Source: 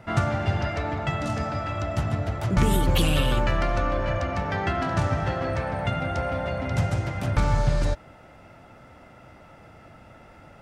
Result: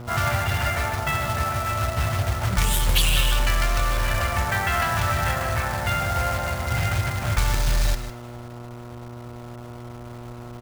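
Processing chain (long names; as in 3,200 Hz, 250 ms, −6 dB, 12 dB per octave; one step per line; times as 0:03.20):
guitar amp tone stack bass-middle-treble 10-0-10
low-pass that shuts in the quiet parts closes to 570 Hz, open at −25.5 dBFS
in parallel at −3 dB: compressor whose output falls as the input rises −36 dBFS, ratio −0.5
on the sum: log-companded quantiser 4 bits
hum with harmonics 120 Hz, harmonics 12, −45 dBFS −6 dB per octave
single-tap delay 153 ms −12 dB
level +7.5 dB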